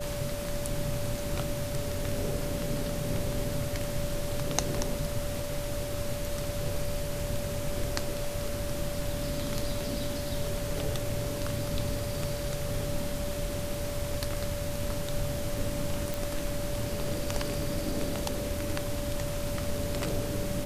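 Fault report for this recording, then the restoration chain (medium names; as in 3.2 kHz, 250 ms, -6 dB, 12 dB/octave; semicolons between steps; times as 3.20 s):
whine 580 Hz -36 dBFS
16.14 s: pop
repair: de-click; band-stop 580 Hz, Q 30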